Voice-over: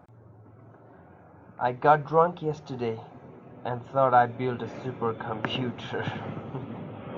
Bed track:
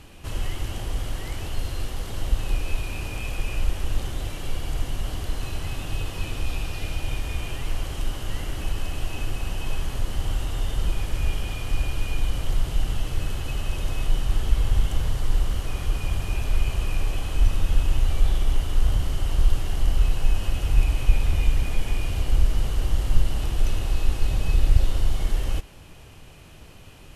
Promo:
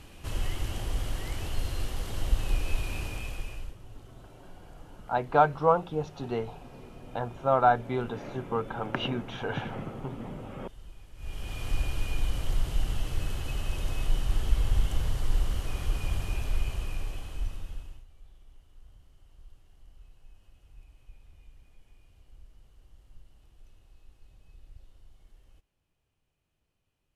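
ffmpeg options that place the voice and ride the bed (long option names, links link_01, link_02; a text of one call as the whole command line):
ffmpeg -i stem1.wav -i stem2.wav -filter_complex "[0:a]adelay=3500,volume=-1.5dB[link_01];[1:a]volume=16dB,afade=type=out:start_time=2.97:duration=0.79:silence=0.0944061,afade=type=in:start_time=11.16:duration=0.5:silence=0.112202,afade=type=out:start_time=16.16:duration=1.89:silence=0.0354813[link_02];[link_01][link_02]amix=inputs=2:normalize=0" out.wav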